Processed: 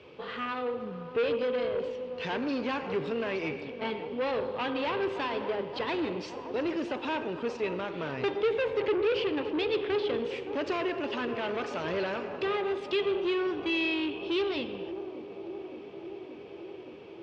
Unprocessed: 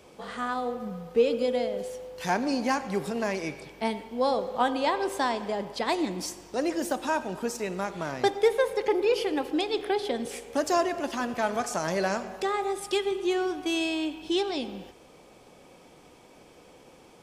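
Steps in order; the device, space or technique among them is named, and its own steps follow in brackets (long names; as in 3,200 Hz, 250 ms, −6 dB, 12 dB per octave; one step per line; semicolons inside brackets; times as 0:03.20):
analogue delay pedal into a guitar amplifier (bucket-brigade delay 571 ms, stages 4,096, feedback 78%, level −14.5 dB; tube saturation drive 28 dB, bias 0.35; loudspeaker in its box 82–4,000 Hz, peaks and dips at 86 Hz +4 dB, 120 Hz +5 dB, 200 Hz −6 dB, 430 Hz +5 dB, 730 Hz −7 dB, 2,700 Hz +7 dB)
level +1.5 dB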